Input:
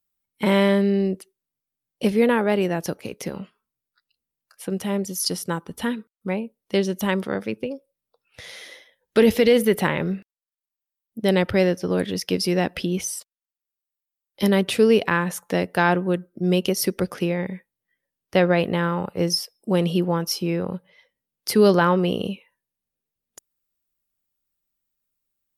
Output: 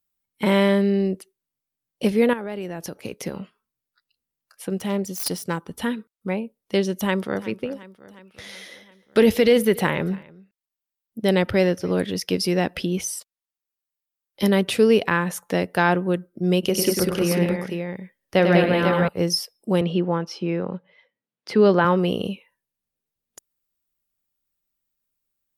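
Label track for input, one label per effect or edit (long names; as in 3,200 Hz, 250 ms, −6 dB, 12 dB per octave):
2.330000	3.030000	downward compressor 3 to 1, threshold −30 dBFS
4.750000	5.740000	phase distortion by the signal itself depth 0.088 ms
7.000000	7.470000	delay throw 360 ms, feedback 65%, level −17.5 dB
8.630000	12.000000	single-tap delay 285 ms −23 dB
16.590000	19.080000	multi-tap delay 40/46/97/137/196/496 ms −17.5/−16.5/−6/−12/−3.5/−5 dB
19.810000	21.850000	band-pass filter 140–3,100 Hz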